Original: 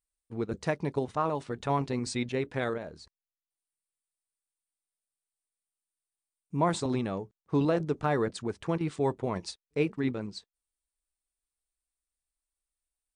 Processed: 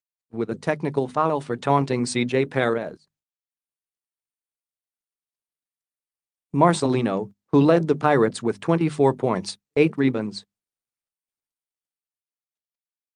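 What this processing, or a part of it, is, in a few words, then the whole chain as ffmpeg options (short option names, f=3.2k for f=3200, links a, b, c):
video call: -af "highpass=f=120:w=0.5412,highpass=f=120:w=1.3066,bandreject=f=50:t=h:w=6,bandreject=f=100:t=h:w=6,bandreject=f=150:t=h:w=6,bandreject=f=200:t=h:w=6,bandreject=f=250:t=h:w=6,dynaudnorm=f=130:g=21:m=3.5dB,agate=range=-18dB:threshold=-42dB:ratio=16:detection=peak,volume=6.5dB" -ar 48000 -c:a libopus -b:a 32k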